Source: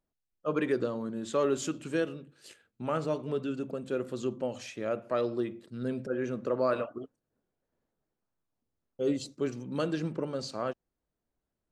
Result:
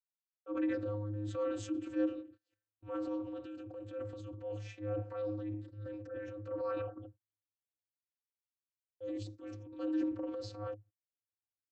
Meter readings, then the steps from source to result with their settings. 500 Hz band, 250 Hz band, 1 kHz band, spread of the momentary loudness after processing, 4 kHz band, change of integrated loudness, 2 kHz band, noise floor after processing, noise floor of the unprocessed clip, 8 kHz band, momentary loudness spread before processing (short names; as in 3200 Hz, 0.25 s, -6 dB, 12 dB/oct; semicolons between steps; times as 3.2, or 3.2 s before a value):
-8.5 dB, -4.0 dB, -11.0 dB, 12 LU, -12.5 dB, -6.5 dB, -11.0 dB, under -85 dBFS, under -85 dBFS, under -10 dB, 8 LU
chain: vocoder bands 32, square 104 Hz; gate -55 dBFS, range -29 dB; transient shaper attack -6 dB, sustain +7 dB; gain -5 dB